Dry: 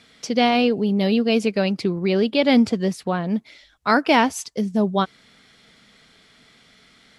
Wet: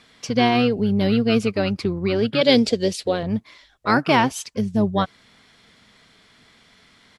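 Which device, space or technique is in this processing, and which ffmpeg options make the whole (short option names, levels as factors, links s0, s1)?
octave pedal: -filter_complex "[0:a]asplit=2[s0][s1];[s1]asetrate=22050,aresample=44100,atempo=2,volume=0.398[s2];[s0][s2]amix=inputs=2:normalize=0,asettb=1/sr,asplit=3[s3][s4][s5];[s3]atrim=end=2.414[s6];[s4]atrim=start=2.41:end=3.23,asetpts=PTS-STARTPTS,afade=t=in:d=0.004:c=qsin,afade=t=out:st=0.816:d=0.004:c=qsin,equalizer=f=125:t=o:w=1:g=-11,equalizer=f=500:t=o:w=1:g=9,equalizer=f=1000:t=o:w=1:g=-9,equalizer=f=4000:t=o:w=1:g=10,equalizer=f=8000:t=o:w=1:g=6[s7];[s5]atrim=start=3.226[s8];[s6][s7]acrossfade=d=0.004:c1=hsin:c2=qsin[s9];[s9][s8]acrossfade=d=0.004:c1=qsin:c2=hsin,volume=0.891"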